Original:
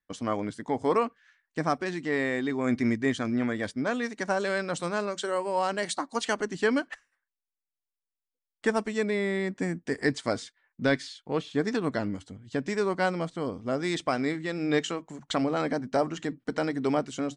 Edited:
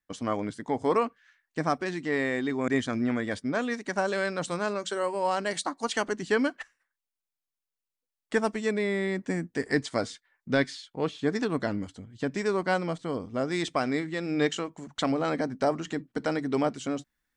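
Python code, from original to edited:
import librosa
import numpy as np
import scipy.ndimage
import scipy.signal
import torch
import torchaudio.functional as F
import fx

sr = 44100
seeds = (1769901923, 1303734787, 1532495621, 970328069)

y = fx.edit(x, sr, fx.cut(start_s=2.68, length_s=0.32), tone=tone)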